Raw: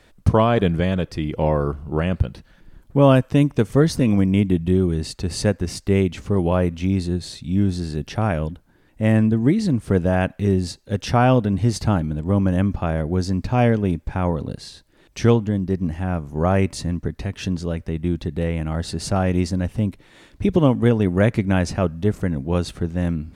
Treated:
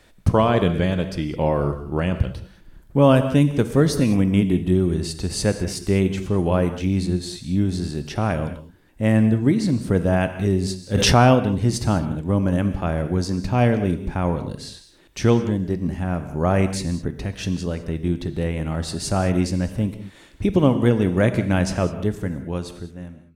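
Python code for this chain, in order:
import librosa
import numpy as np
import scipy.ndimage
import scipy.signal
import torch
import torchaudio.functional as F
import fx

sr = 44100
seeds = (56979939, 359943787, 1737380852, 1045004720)

y = fx.fade_out_tail(x, sr, length_s=1.57)
y = fx.high_shelf(y, sr, hz=6200.0, db=5.0)
y = fx.rev_gated(y, sr, seeds[0], gate_ms=230, shape='flat', drr_db=9.0)
y = fx.env_flatten(y, sr, amount_pct=70, at=(10.94, 11.34), fade=0.02)
y = F.gain(torch.from_numpy(y), -1.0).numpy()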